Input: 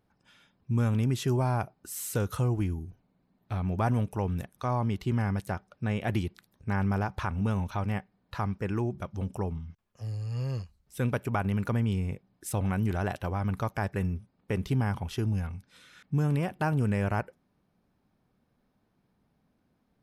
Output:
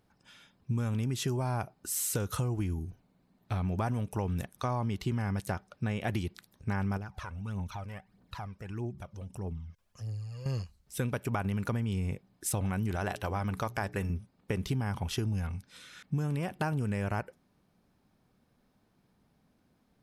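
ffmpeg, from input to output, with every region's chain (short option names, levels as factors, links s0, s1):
-filter_complex "[0:a]asettb=1/sr,asplit=3[s0][s1][s2];[s0]atrim=end=6.974[s3];[s1]atrim=start=6.97:end=10.46,asetpts=PTS-STARTPTS,afade=t=in:d=0.004:c=qsin,afade=t=out:st=3.486:d=0.004:c=qsin,acompressor=threshold=0.00251:ratio=2:attack=3.2:release=140:knee=1:detection=peak,aphaser=in_gain=1:out_gain=1:delay=2.1:decay=0.56:speed=1.6:type=triangular[s4];[s2]atrim=start=10.456[s5];[s3][s4]acrossfade=d=0.004:c1=hsin:c2=qsin[s6];[s6][s5]acrossfade=d=0.004:c1=qsin:c2=hsin,asettb=1/sr,asplit=3[s7][s8][s9];[s7]atrim=end=12.964[s10];[s8]atrim=start=12.96:end=14.1,asetpts=PTS-STARTPTS,afade=t=in:d=0.004:c=qsin,afade=t=out:st=1.136:d=0.004:c=qsin,equalizer=f=93:w=0.34:g=-4,bandreject=f=60:t=h:w=6,bandreject=f=120:t=h:w=6,bandreject=f=180:t=h:w=6,bandreject=f=240:t=h:w=6,bandreject=f=300:t=h:w=6,bandreject=f=360:t=h:w=6,bandreject=f=420:t=h:w=6[s11];[s9]atrim=start=14.096[s12];[s10][s11]acrossfade=d=0.004:c1=hsin:c2=qsin[s13];[s13][s12]acrossfade=d=0.004:c1=qsin:c2=hsin,equalizer=f=7200:w=0.45:g=4.5,acompressor=threshold=0.0316:ratio=6,volume=1.26"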